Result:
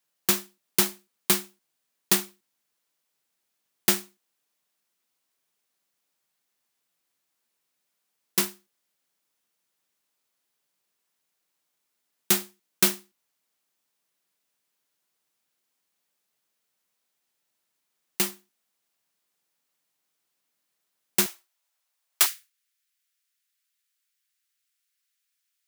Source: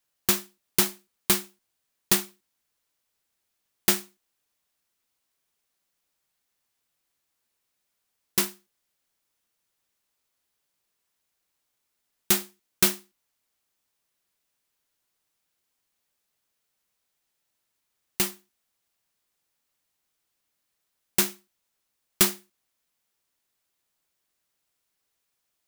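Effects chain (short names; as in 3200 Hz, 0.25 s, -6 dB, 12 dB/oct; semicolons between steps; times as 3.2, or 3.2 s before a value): HPF 130 Hz 24 dB/oct, from 21.26 s 590 Hz, from 22.26 s 1500 Hz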